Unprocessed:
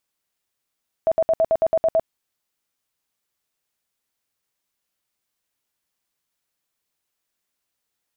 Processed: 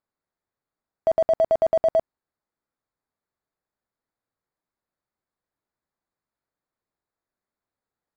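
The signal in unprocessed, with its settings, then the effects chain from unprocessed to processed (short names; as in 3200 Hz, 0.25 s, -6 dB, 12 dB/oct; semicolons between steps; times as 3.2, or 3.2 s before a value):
tone bursts 651 Hz, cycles 30, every 0.11 s, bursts 9, -14 dBFS
Wiener smoothing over 15 samples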